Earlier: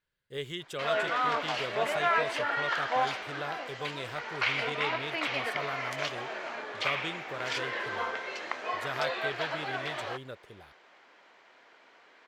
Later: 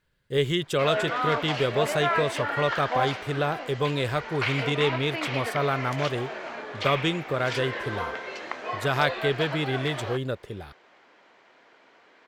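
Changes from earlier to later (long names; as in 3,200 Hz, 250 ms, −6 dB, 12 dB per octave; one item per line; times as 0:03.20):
speech +9.5 dB
master: add low-shelf EQ 450 Hz +7.5 dB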